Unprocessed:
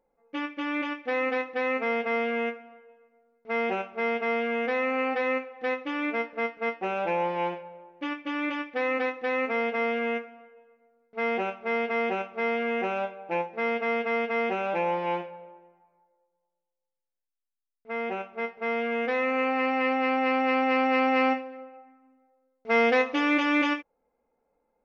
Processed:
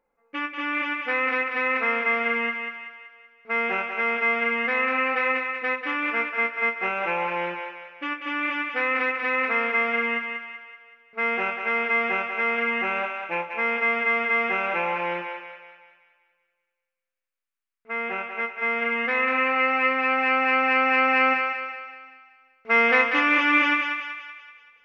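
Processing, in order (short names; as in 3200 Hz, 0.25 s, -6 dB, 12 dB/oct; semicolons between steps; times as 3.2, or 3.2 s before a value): band shelf 1700 Hz +9 dB; thinning echo 0.19 s, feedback 51%, high-pass 590 Hz, level -4.5 dB; gain -2.5 dB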